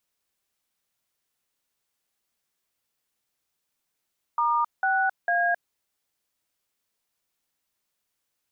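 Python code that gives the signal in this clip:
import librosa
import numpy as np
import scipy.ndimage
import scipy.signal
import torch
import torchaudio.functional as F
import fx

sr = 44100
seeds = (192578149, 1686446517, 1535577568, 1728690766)

y = fx.dtmf(sr, digits='*6A', tone_ms=266, gap_ms=184, level_db=-23.0)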